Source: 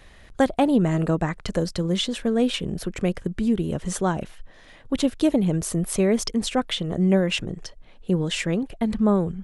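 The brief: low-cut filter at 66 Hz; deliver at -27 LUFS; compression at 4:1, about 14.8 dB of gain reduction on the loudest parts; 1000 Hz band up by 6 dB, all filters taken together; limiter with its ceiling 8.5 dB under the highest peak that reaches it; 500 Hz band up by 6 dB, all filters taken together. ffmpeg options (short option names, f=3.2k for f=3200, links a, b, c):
-af "highpass=66,equalizer=f=500:t=o:g=6,equalizer=f=1k:t=o:g=5.5,acompressor=threshold=-29dB:ratio=4,volume=6dB,alimiter=limit=-17dB:level=0:latency=1"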